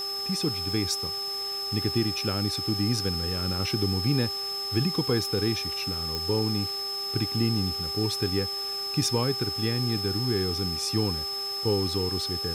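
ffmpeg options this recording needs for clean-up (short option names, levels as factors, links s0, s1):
-af "adeclick=t=4,bandreject=f=396.7:t=h:w=4,bandreject=f=793.4:t=h:w=4,bandreject=f=1190.1:t=h:w=4,bandreject=f=5200:w=30,afwtdn=0.0063"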